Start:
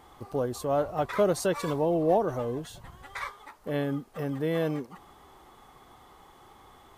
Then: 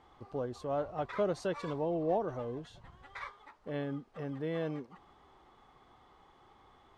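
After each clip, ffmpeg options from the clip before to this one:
ffmpeg -i in.wav -af "lowpass=4600,volume=-7.5dB" out.wav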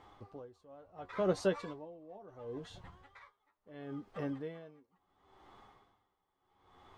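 ffmpeg -i in.wav -af "flanger=delay=9.8:depth=1.2:regen=41:speed=0.52:shape=sinusoidal,aeval=exprs='val(0)*pow(10,-25*(0.5-0.5*cos(2*PI*0.72*n/s))/20)':channel_layout=same,volume=7dB" out.wav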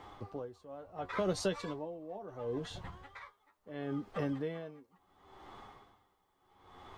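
ffmpeg -i in.wav -filter_complex "[0:a]acrossover=split=120|3000[link_01][link_02][link_03];[link_02]acompressor=threshold=-40dB:ratio=3[link_04];[link_01][link_04][link_03]amix=inputs=3:normalize=0,volume=7dB" out.wav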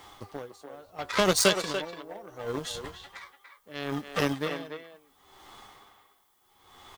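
ffmpeg -i in.wav -filter_complex "[0:a]aeval=exprs='0.1*(cos(1*acos(clip(val(0)/0.1,-1,1)))-cos(1*PI/2))+0.01*(cos(7*acos(clip(val(0)/0.1,-1,1)))-cos(7*PI/2))':channel_layout=same,crystalizer=i=7:c=0,asplit=2[link_01][link_02];[link_02]adelay=290,highpass=300,lowpass=3400,asoftclip=type=hard:threshold=-24.5dB,volume=-7dB[link_03];[link_01][link_03]amix=inputs=2:normalize=0,volume=8dB" out.wav

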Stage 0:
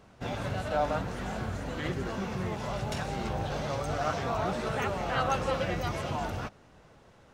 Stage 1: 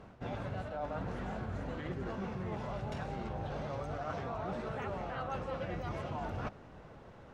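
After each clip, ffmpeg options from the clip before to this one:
ffmpeg -i in.wav -af "lowpass=frequency=1700:poles=1,areverse,acompressor=threshold=-40dB:ratio=10,areverse,volume=4.5dB" out.wav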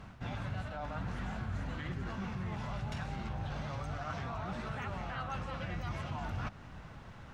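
ffmpeg -i in.wav -filter_complex "[0:a]equalizer=frequency=460:width_type=o:width=1.6:gain=-13,asplit=2[link_01][link_02];[link_02]alimiter=level_in=18dB:limit=-24dB:level=0:latency=1:release=168,volume=-18dB,volume=0.5dB[link_03];[link_01][link_03]amix=inputs=2:normalize=0,volume=1dB" out.wav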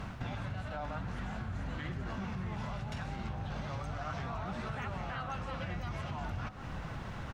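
ffmpeg -i in.wav -filter_complex "[0:a]acompressor=threshold=-45dB:ratio=6,asplit=2[link_01][link_02];[link_02]adelay=1283,volume=-12dB,highshelf=frequency=4000:gain=-28.9[link_03];[link_01][link_03]amix=inputs=2:normalize=0,volume=9dB" out.wav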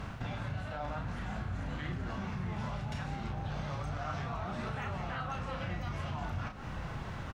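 ffmpeg -i in.wav -filter_complex "[0:a]asplit=2[link_01][link_02];[link_02]adelay=34,volume=-6dB[link_03];[link_01][link_03]amix=inputs=2:normalize=0" out.wav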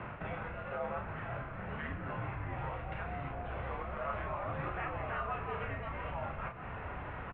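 ffmpeg -i in.wav -af "asubboost=boost=3.5:cutoff=130,highpass=frequency=180:width_type=q:width=0.5412,highpass=frequency=180:width_type=q:width=1.307,lowpass=frequency=2700:width_type=q:width=0.5176,lowpass=frequency=2700:width_type=q:width=0.7071,lowpass=frequency=2700:width_type=q:width=1.932,afreqshift=-81,volume=2.5dB" out.wav

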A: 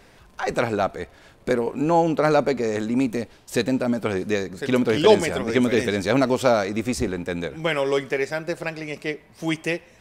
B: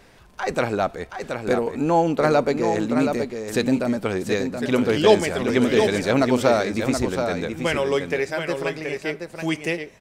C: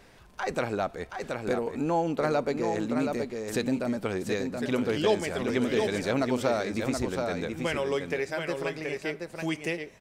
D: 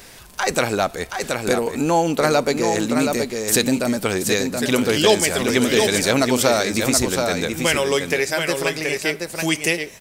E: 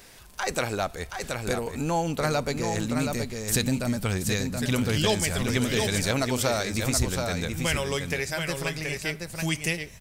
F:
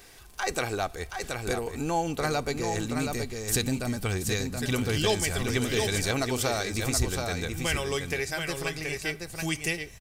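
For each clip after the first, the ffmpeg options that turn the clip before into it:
ffmpeg -i in.wav -af "aecho=1:1:725:0.473" out.wav
ffmpeg -i in.wav -af "acompressor=threshold=-27dB:ratio=1.5,volume=-3.5dB" out.wav
ffmpeg -i in.wav -af "crystalizer=i=4:c=0,volume=8dB" out.wav
ffmpeg -i in.wav -af "asubboost=boost=8:cutoff=130,volume=-7.5dB" out.wav
ffmpeg -i in.wav -af "aecho=1:1:2.6:0.35,volume=-2dB" out.wav

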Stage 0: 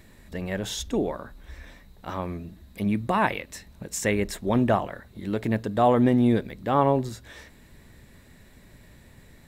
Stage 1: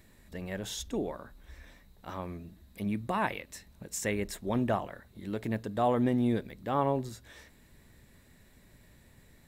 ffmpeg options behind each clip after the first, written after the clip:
ffmpeg -i in.wav -af "highshelf=frequency=6800:gain=4.5,volume=-7.5dB" out.wav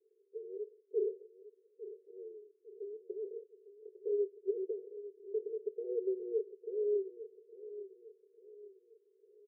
ffmpeg -i in.wav -af "asuperpass=centerf=420:order=8:qfactor=4.7,aecho=1:1:853|1706|2559|3412:0.2|0.0838|0.0352|0.0148,volume=5dB" out.wav

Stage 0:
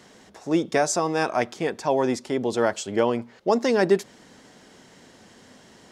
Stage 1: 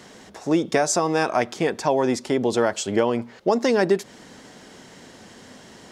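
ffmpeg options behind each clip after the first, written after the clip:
ffmpeg -i in.wav -af "acompressor=threshold=-23dB:ratio=2.5,volume=5.5dB" out.wav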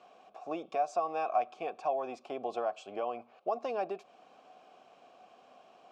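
ffmpeg -i in.wav -filter_complex "[0:a]alimiter=limit=-10.5dB:level=0:latency=1:release=455,asplit=3[link_01][link_02][link_03];[link_01]bandpass=frequency=730:width_type=q:width=8,volume=0dB[link_04];[link_02]bandpass=frequency=1090:width_type=q:width=8,volume=-6dB[link_05];[link_03]bandpass=frequency=2440:width_type=q:width=8,volume=-9dB[link_06];[link_04][link_05][link_06]amix=inputs=3:normalize=0" out.wav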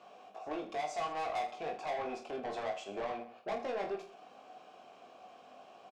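ffmpeg -i in.wav -filter_complex "[0:a]asoftclip=type=tanh:threshold=-36dB,asplit=2[link_01][link_02];[link_02]aecho=0:1:20|46|79.8|123.7|180.9:0.631|0.398|0.251|0.158|0.1[link_03];[link_01][link_03]amix=inputs=2:normalize=0,volume=1dB" out.wav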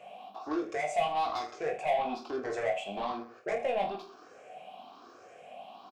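ffmpeg -i in.wav -af "afftfilt=real='re*pow(10,15/40*sin(2*PI*(0.5*log(max(b,1)*sr/1024/100)/log(2)-(1.1)*(pts-256)/sr)))':imag='im*pow(10,15/40*sin(2*PI*(0.5*log(max(b,1)*sr/1024/100)/log(2)-(1.1)*(pts-256)/sr)))':win_size=1024:overlap=0.75,volume=2.5dB" out.wav

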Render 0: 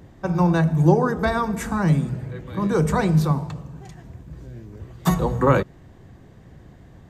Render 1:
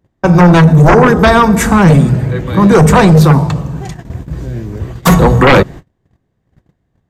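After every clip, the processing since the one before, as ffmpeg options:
ffmpeg -i in.wav -af "agate=range=-35dB:threshold=-40dB:ratio=16:detection=peak,aeval=exprs='0.631*sin(PI/2*3.55*val(0)/0.631)':channel_layout=same,volume=2.5dB" out.wav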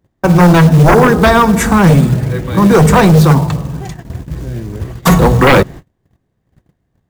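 ffmpeg -i in.wav -af "acrusher=bits=6:mode=log:mix=0:aa=0.000001,volume=-1dB" out.wav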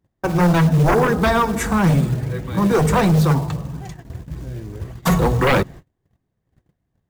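ffmpeg -i in.wav -af "flanger=delay=0.8:depth=2.1:regen=-68:speed=1.6:shape=triangular,volume=-4.5dB" out.wav

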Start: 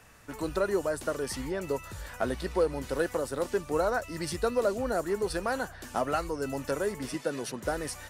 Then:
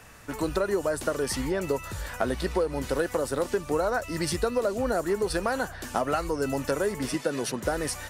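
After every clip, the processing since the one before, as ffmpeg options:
ffmpeg -i in.wav -af "acompressor=threshold=-28dB:ratio=6,volume=6dB" out.wav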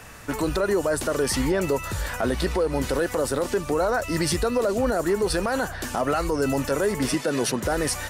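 ffmpeg -i in.wav -af "alimiter=limit=-21dB:level=0:latency=1:release=19,volume=6.5dB" out.wav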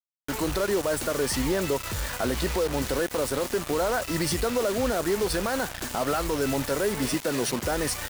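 ffmpeg -i in.wav -af "acrusher=bits=4:mix=0:aa=0.000001,volume=-3dB" out.wav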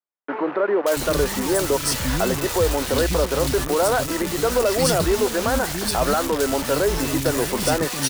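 ffmpeg -i in.wav -filter_complex "[0:a]acrossover=split=260|2000[link_01][link_02][link_03];[link_03]adelay=580[link_04];[link_01]adelay=680[link_05];[link_05][link_02][link_04]amix=inputs=3:normalize=0,volume=7dB" out.wav

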